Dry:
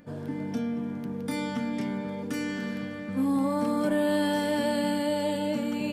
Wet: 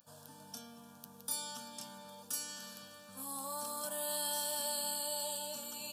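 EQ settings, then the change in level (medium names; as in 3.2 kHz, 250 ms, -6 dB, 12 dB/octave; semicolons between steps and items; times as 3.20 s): pre-emphasis filter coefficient 0.97; static phaser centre 860 Hz, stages 4; +8.0 dB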